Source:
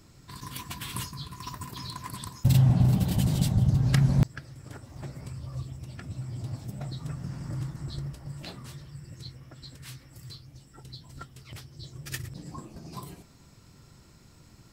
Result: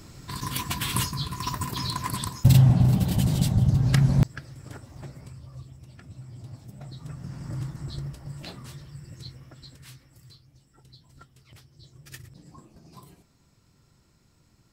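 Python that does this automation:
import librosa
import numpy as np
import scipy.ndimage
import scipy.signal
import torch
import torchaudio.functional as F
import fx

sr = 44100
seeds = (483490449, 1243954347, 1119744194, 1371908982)

y = fx.gain(x, sr, db=fx.line((2.16, 8.5), (2.8, 2.0), (4.72, 2.0), (5.53, -6.5), (6.7, -6.5), (7.56, 1.0), (9.4, 1.0), (10.38, -8.0)))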